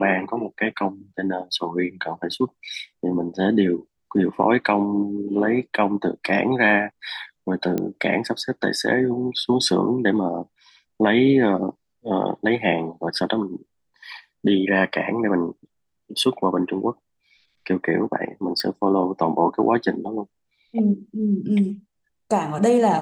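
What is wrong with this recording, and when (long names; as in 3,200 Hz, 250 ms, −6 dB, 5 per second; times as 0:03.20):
0:07.78: click −12 dBFS
0:18.60: click −12 dBFS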